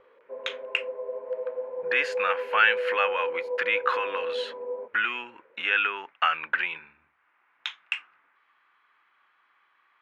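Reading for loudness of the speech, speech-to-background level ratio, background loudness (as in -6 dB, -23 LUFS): -27.0 LUFS, 5.5 dB, -32.5 LUFS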